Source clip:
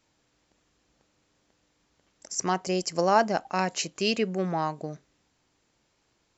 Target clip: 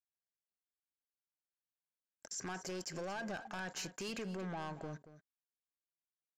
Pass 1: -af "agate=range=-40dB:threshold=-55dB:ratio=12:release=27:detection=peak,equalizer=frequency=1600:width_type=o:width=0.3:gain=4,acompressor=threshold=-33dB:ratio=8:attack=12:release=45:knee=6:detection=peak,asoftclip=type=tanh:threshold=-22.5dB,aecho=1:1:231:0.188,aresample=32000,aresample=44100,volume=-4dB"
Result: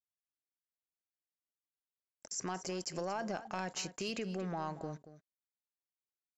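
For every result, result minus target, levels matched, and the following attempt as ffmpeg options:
soft clipping: distortion −12 dB; 2,000 Hz band −4.5 dB
-af "agate=range=-40dB:threshold=-55dB:ratio=12:release=27:detection=peak,equalizer=frequency=1600:width_type=o:width=0.3:gain=4,acompressor=threshold=-33dB:ratio=8:attack=12:release=45:knee=6:detection=peak,asoftclip=type=tanh:threshold=-33.5dB,aecho=1:1:231:0.188,aresample=32000,aresample=44100,volume=-4dB"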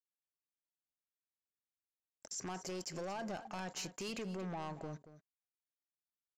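2,000 Hz band −4.5 dB
-af "agate=range=-40dB:threshold=-55dB:ratio=12:release=27:detection=peak,equalizer=frequency=1600:width_type=o:width=0.3:gain=13,acompressor=threshold=-33dB:ratio=8:attack=12:release=45:knee=6:detection=peak,asoftclip=type=tanh:threshold=-33.5dB,aecho=1:1:231:0.188,aresample=32000,aresample=44100,volume=-4dB"

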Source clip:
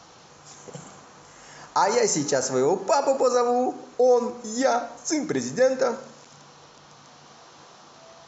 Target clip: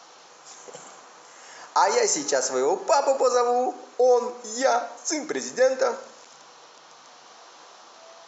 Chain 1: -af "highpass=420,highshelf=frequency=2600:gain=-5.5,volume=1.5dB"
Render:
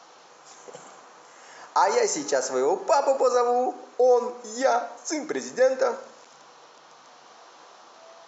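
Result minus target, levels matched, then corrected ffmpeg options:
4,000 Hz band −3.5 dB
-af "highpass=420,volume=1.5dB"

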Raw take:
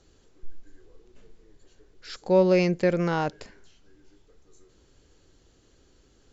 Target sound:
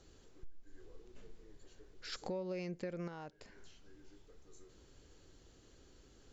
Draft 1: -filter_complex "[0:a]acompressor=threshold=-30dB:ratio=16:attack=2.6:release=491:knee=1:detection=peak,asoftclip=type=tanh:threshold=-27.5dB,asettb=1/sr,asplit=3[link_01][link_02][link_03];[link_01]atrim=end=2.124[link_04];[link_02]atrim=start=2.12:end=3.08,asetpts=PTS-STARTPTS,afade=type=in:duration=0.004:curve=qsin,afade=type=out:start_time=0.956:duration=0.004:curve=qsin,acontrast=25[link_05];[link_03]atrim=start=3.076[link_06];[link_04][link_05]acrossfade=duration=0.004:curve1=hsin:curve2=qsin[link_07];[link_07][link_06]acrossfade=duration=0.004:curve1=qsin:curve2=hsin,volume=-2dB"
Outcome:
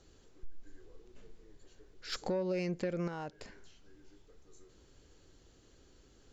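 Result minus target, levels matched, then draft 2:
downward compressor: peak gain reduction −7.5 dB
-filter_complex "[0:a]acompressor=threshold=-38dB:ratio=16:attack=2.6:release=491:knee=1:detection=peak,asoftclip=type=tanh:threshold=-27.5dB,asettb=1/sr,asplit=3[link_01][link_02][link_03];[link_01]atrim=end=2.124[link_04];[link_02]atrim=start=2.12:end=3.08,asetpts=PTS-STARTPTS,afade=type=in:duration=0.004:curve=qsin,afade=type=out:start_time=0.956:duration=0.004:curve=qsin,acontrast=25[link_05];[link_03]atrim=start=3.076[link_06];[link_04][link_05]acrossfade=duration=0.004:curve1=hsin:curve2=qsin[link_07];[link_07][link_06]acrossfade=duration=0.004:curve1=qsin:curve2=hsin,volume=-2dB"

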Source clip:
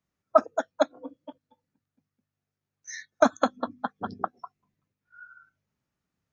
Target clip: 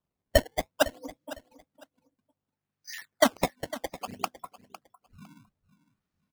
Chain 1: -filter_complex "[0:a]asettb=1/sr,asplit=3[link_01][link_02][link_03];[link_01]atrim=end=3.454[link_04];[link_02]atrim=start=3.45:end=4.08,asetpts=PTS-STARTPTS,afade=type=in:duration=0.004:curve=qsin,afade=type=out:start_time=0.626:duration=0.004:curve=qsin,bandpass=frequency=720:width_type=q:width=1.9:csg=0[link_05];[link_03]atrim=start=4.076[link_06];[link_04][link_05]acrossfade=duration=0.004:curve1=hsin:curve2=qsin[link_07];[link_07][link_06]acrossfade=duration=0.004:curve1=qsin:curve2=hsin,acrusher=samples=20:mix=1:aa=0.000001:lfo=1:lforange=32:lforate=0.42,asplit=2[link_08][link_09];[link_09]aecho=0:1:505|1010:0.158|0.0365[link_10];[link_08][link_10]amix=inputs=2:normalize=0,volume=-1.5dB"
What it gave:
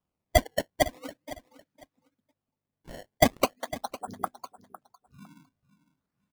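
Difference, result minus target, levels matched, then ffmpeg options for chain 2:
sample-and-hold swept by an LFO: distortion +7 dB
-filter_complex "[0:a]asettb=1/sr,asplit=3[link_01][link_02][link_03];[link_01]atrim=end=3.454[link_04];[link_02]atrim=start=3.45:end=4.08,asetpts=PTS-STARTPTS,afade=type=in:duration=0.004:curve=qsin,afade=type=out:start_time=0.626:duration=0.004:curve=qsin,bandpass=frequency=720:width_type=q:width=1.9:csg=0[link_05];[link_03]atrim=start=4.076[link_06];[link_04][link_05]acrossfade=duration=0.004:curve1=hsin:curve2=qsin[link_07];[link_07][link_06]acrossfade=duration=0.004:curve1=qsin:curve2=hsin,acrusher=samples=20:mix=1:aa=0.000001:lfo=1:lforange=32:lforate=0.61,asplit=2[link_08][link_09];[link_09]aecho=0:1:505|1010:0.158|0.0365[link_10];[link_08][link_10]amix=inputs=2:normalize=0,volume=-1.5dB"

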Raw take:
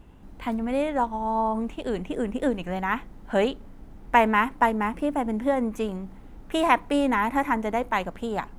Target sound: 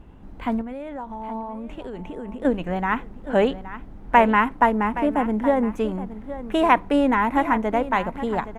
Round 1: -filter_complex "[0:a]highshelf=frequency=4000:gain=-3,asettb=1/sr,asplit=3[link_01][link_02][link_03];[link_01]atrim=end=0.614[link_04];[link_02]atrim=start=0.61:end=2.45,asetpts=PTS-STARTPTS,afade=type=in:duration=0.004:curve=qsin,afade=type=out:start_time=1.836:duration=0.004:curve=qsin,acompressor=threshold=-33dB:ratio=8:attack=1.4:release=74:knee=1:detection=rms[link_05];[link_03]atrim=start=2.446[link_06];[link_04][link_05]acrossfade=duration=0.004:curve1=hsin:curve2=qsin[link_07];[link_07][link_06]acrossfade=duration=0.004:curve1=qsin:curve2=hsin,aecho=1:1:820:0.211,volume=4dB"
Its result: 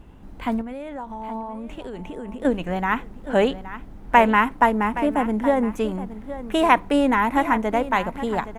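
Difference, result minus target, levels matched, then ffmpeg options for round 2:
8,000 Hz band +6.5 dB
-filter_complex "[0:a]highshelf=frequency=4000:gain=-11.5,asettb=1/sr,asplit=3[link_01][link_02][link_03];[link_01]atrim=end=0.614[link_04];[link_02]atrim=start=0.61:end=2.45,asetpts=PTS-STARTPTS,afade=type=in:duration=0.004:curve=qsin,afade=type=out:start_time=1.836:duration=0.004:curve=qsin,acompressor=threshold=-33dB:ratio=8:attack=1.4:release=74:knee=1:detection=rms[link_05];[link_03]atrim=start=2.446[link_06];[link_04][link_05]acrossfade=duration=0.004:curve1=hsin:curve2=qsin[link_07];[link_07][link_06]acrossfade=duration=0.004:curve1=qsin:curve2=hsin,aecho=1:1:820:0.211,volume=4dB"

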